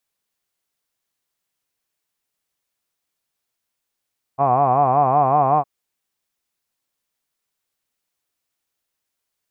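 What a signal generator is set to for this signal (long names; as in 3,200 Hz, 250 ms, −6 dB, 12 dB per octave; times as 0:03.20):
vowel by formant synthesis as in hod, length 1.26 s, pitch 131 Hz, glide +1.5 semitones, vibrato depth 1.35 semitones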